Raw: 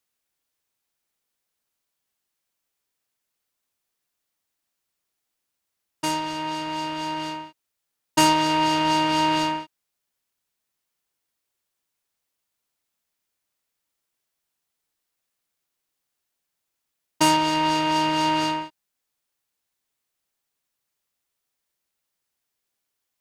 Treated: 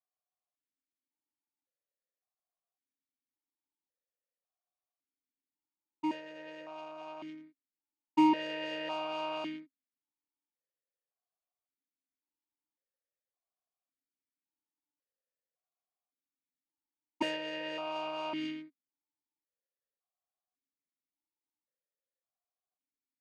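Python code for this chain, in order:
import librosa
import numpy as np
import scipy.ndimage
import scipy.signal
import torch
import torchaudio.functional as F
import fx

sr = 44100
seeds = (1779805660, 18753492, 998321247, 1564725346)

y = fx.wiener(x, sr, points=15)
y = fx.vowel_held(y, sr, hz=1.8)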